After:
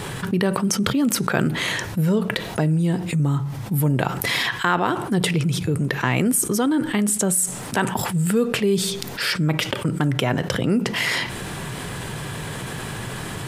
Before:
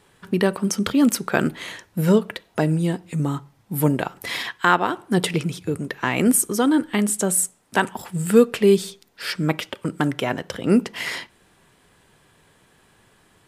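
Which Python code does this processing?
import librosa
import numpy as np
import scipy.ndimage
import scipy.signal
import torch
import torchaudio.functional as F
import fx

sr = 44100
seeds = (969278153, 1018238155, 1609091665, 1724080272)

y = fx.peak_eq(x, sr, hz=130.0, db=9.0, octaves=0.78)
y = fx.env_flatten(y, sr, amount_pct=70)
y = y * 10.0 ** (-8.0 / 20.0)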